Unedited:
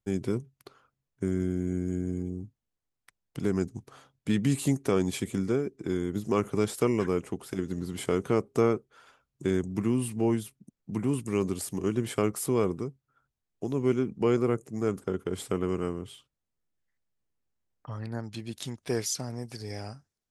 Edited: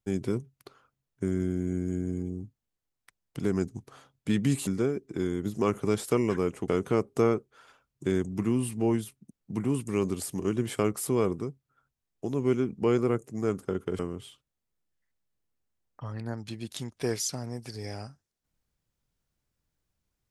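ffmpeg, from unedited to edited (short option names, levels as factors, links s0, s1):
-filter_complex "[0:a]asplit=4[s0][s1][s2][s3];[s0]atrim=end=4.672[s4];[s1]atrim=start=5.368:end=7.382[s5];[s2]atrim=start=8.068:end=15.382[s6];[s3]atrim=start=15.848[s7];[s4][s5]acrossfade=d=0.004:c1=hsin:c2=hsin[s8];[s8][s6]acrossfade=d=0.004:c1=hsin:c2=hsin[s9];[s9][s7]acrossfade=d=0.004:c1=hsin:c2=hsin"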